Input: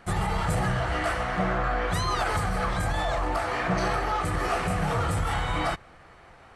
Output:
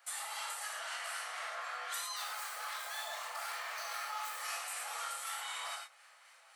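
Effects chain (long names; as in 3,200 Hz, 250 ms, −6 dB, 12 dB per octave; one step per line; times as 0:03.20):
0:02.16–0:04.36: running median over 5 samples
elliptic high-pass filter 540 Hz, stop band 40 dB
first difference
downward compressor, threshold −43 dBFS, peak gain reduction 7.5 dB
two-band tremolo in antiphase 3.9 Hz, depth 50%, crossover 1,100 Hz
reverb whose tail is shaped and stops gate 140 ms flat, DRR −1 dB
level +4.5 dB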